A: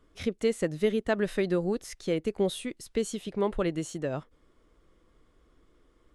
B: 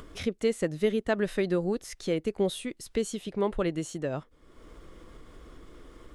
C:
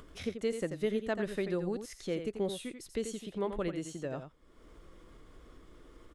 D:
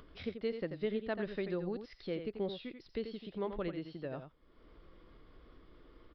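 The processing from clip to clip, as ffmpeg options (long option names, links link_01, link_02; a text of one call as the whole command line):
ffmpeg -i in.wav -af "acompressor=mode=upward:threshold=-34dB:ratio=2.5" out.wav
ffmpeg -i in.wav -af "aecho=1:1:87:0.376,volume=-6.5dB" out.wav
ffmpeg -i in.wav -af "aresample=11025,aresample=44100,volume=-3.5dB" out.wav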